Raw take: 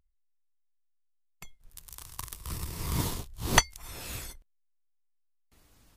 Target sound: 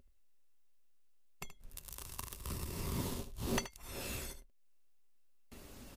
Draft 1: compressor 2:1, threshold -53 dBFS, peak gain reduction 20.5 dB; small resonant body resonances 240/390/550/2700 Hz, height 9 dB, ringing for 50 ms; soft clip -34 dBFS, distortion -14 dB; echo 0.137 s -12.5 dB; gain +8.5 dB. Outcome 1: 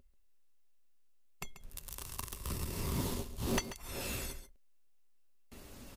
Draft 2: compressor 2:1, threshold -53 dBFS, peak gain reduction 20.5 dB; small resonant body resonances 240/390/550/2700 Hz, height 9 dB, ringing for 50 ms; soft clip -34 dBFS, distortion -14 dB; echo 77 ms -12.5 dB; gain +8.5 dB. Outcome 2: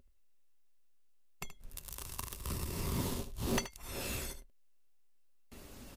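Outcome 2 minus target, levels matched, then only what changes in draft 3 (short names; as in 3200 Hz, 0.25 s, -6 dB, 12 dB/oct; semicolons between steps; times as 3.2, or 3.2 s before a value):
compressor: peak gain reduction -3 dB
change: compressor 2:1, threshold -59.5 dBFS, peak gain reduction 23.5 dB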